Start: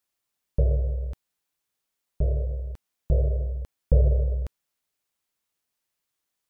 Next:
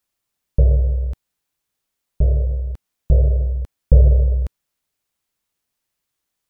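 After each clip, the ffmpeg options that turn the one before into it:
-af "lowshelf=f=190:g=6,volume=3dB"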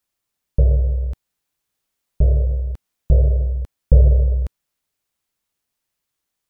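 -af "dynaudnorm=f=630:g=5:m=11.5dB,volume=-1dB"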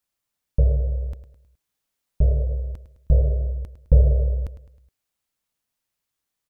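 -af "bandreject=f=370:w=12,aecho=1:1:105|210|315|420:0.237|0.107|0.048|0.0216,volume=-3dB"

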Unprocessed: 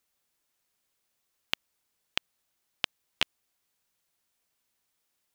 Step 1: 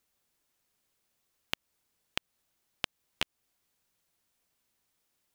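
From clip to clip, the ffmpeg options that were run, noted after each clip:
-af "lowshelf=f=460:g=5,acompressor=threshold=-31dB:ratio=2"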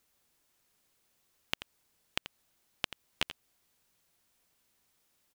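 -af "alimiter=limit=-12dB:level=0:latency=1:release=141,aecho=1:1:85:0.237,volume=4dB"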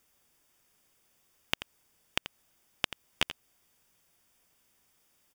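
-af "asuperstop=centerf=4100:order=4:qfactor=7.3,volume=4dB"

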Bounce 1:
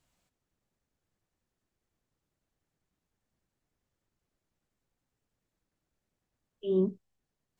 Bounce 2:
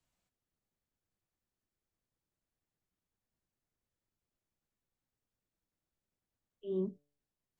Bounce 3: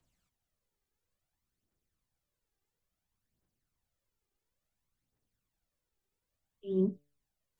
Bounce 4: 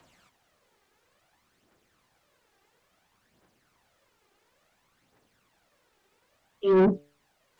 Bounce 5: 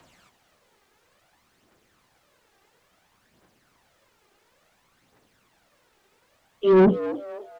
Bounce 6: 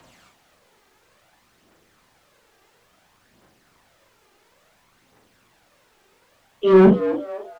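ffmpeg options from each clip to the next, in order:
-filter_complex "[0:a]acrossover=split=160|490|1400[a][b][c][d];[d]alimiter=level_in=27dB:limit=-24dB:level=0:latency=1,volume=-27dB[e];[a][b][c][e]amix=inputs=4:normalize=0,bandreject=f=145.1:t=h:w=4,bandreject=f=290.2:t=h:w=4,bandreject=f=435.3:t=h:w=4,bandreject=f=580.4:t=h:w=4,bandreject=f=725.5:t=h:w=4,bandreject=f=870.6:t=h:w=4,volume=-8dB"
-af "aphaser=in_gain=1:out_gain=1:delay=2.6:decay=0.56:speed=0.58:type=triangular,volume=1.5dB"
-filter_complex "[0:a]asplit=2[a][b];[b]highpass=f=720:p=1,volume=27dB,asoftclip=type=tanh:threshold=-19dB[c];[a][c]amix=inputs=2:normalize=0,lowpass=f=1.6k:p=1,volume=-6dB,volume=6.5dB"
-filter_complex "[0:a]asplit=5[a][b][c][d][e];[b]adelay=261,afreqshift=100,volume=-14dB[f];[c]adelay=522,afreqshift=200,volume=-22.6dB[g];[d]adelay=783,afreqshift=300,volume=-31.3dB[h];[e]adelay=1044,afreqshift=400,volume=-39.9dB[i];[a][f][g][h][i]amix=inputs=5:normalize=0,volume=4.5dB"
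-filter_complex "[0:a]asplit=2[a][b];[b]asoftclip=type=hard:threshold=-16.5dB,volume=-6.5dB[c];[a][c]amix=inputs=2:normalize=0,asplit=2[d][e];[e]adelay=42,volume=-5dB[f];[d][f]amix=inputs=2:normalize=0"

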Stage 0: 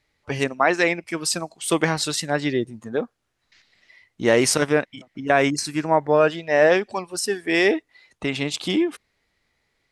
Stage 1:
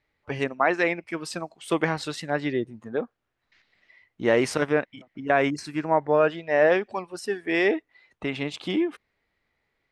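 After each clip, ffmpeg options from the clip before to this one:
-af "bass=f=250:g=-2,treble=f=4k:g=-13,volume=-3dB"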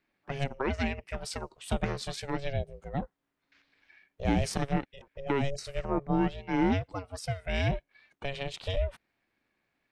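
-filter_complex "[0:a]aeval=exprs='val(0)*sin(2*PI*280*n/s)':c=same,acrossover=split=490|3000[a][b][c];[b]acompressor=threshold=-40dB:ratio=3[d];[a][d][c]amix=inputs=3:normalize=0"

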